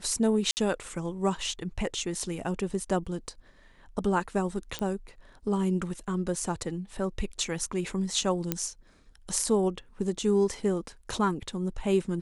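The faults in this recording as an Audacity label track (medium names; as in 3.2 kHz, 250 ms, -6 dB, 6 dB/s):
0.510000	0.570000	dropout 59 ms
4.790000	4.790000	pop -16 dBFS
8.520000	8.520000	pop -10 dBFS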